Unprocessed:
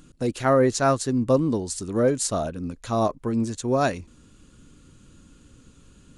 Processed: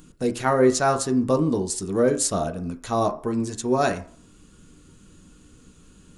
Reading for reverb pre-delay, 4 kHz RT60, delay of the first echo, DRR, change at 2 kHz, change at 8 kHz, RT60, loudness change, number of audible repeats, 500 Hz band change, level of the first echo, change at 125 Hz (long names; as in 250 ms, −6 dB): 3 ms, 0.45 s, no echo audible, 5.0 dB, +1.5 dB, +3.0 dB, 0.50 s, +0.5 dB, no echo audible, +0.5 dB, no echo audible, −1.5 dB